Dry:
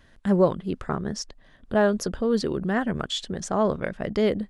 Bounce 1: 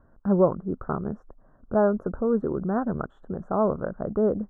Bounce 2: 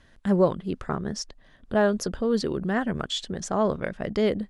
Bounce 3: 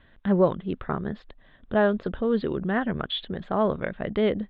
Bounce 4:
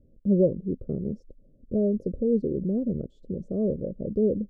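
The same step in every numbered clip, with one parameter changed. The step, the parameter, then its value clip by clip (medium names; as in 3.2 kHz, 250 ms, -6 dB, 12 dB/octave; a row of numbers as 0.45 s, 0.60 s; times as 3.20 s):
elliptic low-pass, frequency: 1.4 kHz, 11 kHz, 3.7 kHz, 540 Hz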